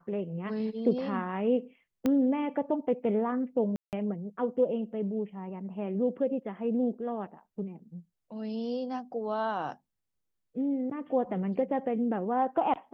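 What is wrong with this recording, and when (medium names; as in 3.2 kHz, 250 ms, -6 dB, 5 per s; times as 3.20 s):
2.06 s: pop -16 dBFS
3.76–3.93 s: dropout 168 ms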